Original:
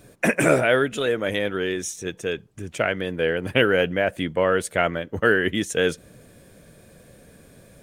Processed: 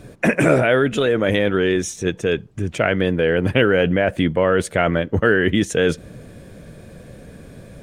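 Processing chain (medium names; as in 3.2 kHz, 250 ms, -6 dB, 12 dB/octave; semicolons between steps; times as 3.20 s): treble shelf 7.5 kHz -11 dB; in parallel at -2.5 dB: compressor with a negative ratio -26 dBFS, ratio -1; on the sum: bass shelf 300 Hz +5.5 dB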